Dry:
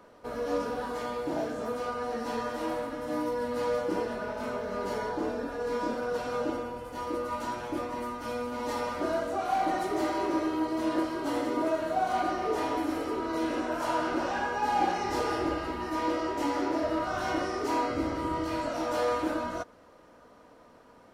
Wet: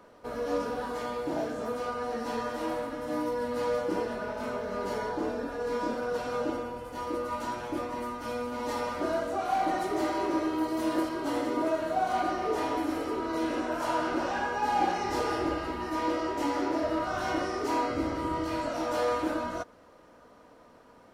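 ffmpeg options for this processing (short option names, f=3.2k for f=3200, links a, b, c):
-filter_complex "[0:a]asettb=1/sr,asplit=3[a][b][c];[a]atrim=end=10.584[d];[b]atrim=start=10.58:end=11.09,asetpts=PTS-STARTPTS,afade=t=in:d=0.004:c=qsin,afade=t=out:st=0.506:d=0.004:c=qsin,highshelf=f=10k:g=12[e];[c]atrim=start=11.086[f];[d][e]acrossfade=d=0.004:c1=hsin:c2=qsin[g];[g][f]acrossfade=d=0.004:c1=qsin:c2=hsin"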